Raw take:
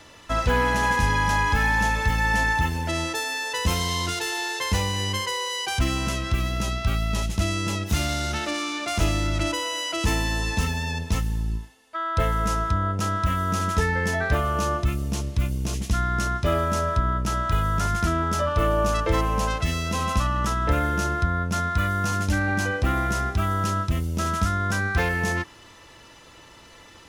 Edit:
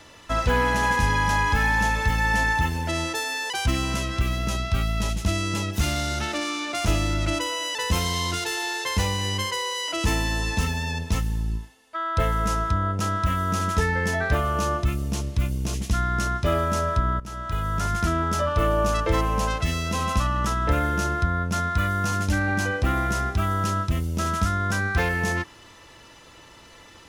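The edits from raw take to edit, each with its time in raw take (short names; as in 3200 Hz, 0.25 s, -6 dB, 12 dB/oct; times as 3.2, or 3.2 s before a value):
3.5–5.63 move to 9.88
17.2–18.24 fade in equal-power, from -15 dB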